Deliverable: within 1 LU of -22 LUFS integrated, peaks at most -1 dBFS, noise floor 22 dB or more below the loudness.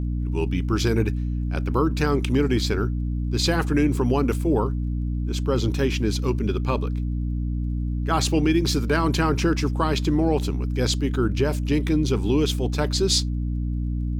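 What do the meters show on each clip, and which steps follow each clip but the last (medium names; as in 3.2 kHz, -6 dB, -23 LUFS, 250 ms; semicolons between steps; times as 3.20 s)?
tick rate 26 per s; hum 60 Hz; highest harmonic 300 Hz; hum level -23 dBFS; loudness -23.5 LUFS; peak level -9.0 dBFS; loudness target -22.0 LUFS
-> de-click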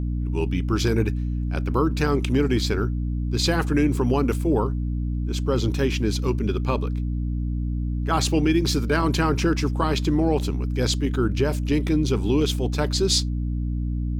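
tick rate 0.49 per s; hum 60 Hz; highest harmonic 300 Hz; hum level -23 dBFS
-> de-hum 60 Hz, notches 5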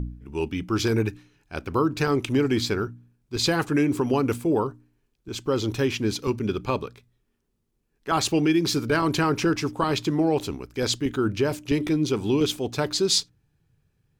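hum not found; loudness -24.5 LUFS; peak level -10.5 dBFS; loudness target -22.0 LUFS
-> trim +2.5 dB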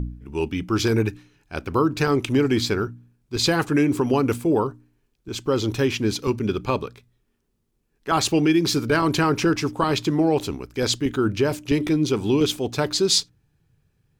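loudness -22.5 LUFS; peak level -8.0 dBFS; noise floor -71 dBFS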